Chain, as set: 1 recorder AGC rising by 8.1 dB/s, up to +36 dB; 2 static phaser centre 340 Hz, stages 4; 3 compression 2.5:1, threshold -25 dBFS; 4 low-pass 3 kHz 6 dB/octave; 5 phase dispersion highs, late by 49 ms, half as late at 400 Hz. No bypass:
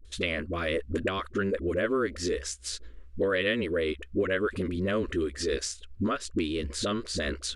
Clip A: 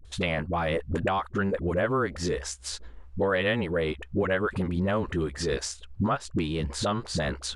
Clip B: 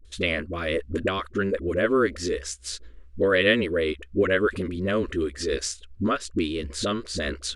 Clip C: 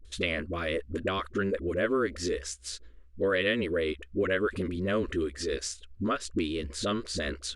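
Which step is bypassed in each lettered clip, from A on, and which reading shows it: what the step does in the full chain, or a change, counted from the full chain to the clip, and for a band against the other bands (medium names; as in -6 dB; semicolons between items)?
2, 1 kHz band +5.5 dB; 3, crest factor change +3.5 dB; 1, momentary loudness spread change +2 LU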